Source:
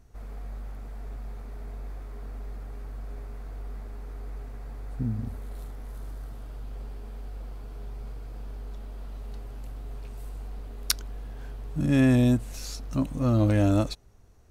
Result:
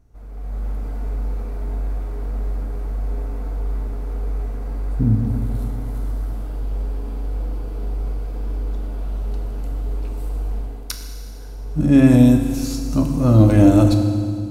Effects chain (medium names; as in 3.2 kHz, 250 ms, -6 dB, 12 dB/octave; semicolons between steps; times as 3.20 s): treble shelf 6.4 kHz +3.5 dB, from 12.05 s +10 dB; level rider gain up to 11.5 dB; tilt shelf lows +4 dB, about 1.3 kHz; band-stop 1.8 kHz, Q 23; FDN reverb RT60 2.1 s, low-frequency decay 1.45×, high-frequency decay 0.95×, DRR 3.5 dB; trim -4.5 dB